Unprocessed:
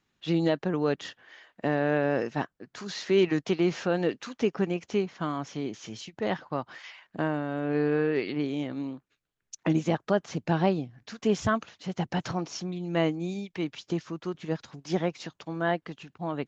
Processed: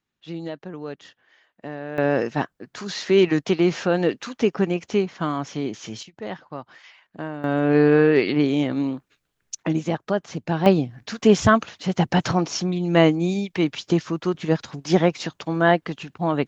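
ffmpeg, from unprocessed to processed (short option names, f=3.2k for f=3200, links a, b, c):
-af "asetnsamples=n=441:p=0,asendcmd='1.98 volume volume 6dB;6.03 volume volume -3dB;7.44 volume volume 10dB;9.62 volume volume 2dB;10.66 volume volume 10dB',volume=-7dB"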